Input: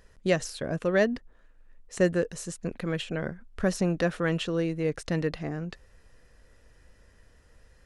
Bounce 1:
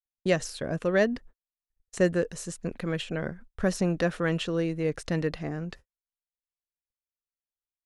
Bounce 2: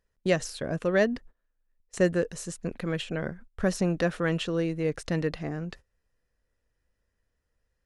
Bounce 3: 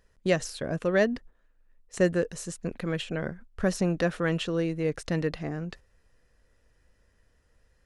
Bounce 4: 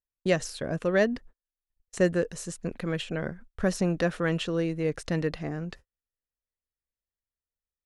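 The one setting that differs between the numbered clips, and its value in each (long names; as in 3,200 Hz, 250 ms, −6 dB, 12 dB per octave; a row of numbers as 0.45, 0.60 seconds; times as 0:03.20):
noise gate, range: −55, −20, −8, −42 decibels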